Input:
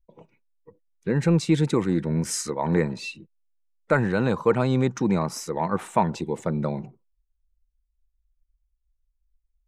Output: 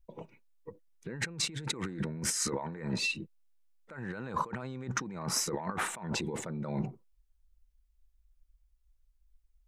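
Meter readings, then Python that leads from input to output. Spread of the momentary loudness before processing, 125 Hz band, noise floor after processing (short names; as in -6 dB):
8 LU, -13.5 dB, -70 dBFS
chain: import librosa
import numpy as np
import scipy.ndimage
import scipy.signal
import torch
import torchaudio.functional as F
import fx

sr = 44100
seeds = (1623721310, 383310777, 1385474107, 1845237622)

y = fx.dynamic_eq(x, sr, hz=1600.0, q=1.3, threshold_db=-42.0, ratio=4.0, max_db=6)
y = fx.over_compress(y, sr, threshold_db=-33.0, ratio=-1.0)
y = F.gain(torch.from_numpy(y), -4.0).numpy()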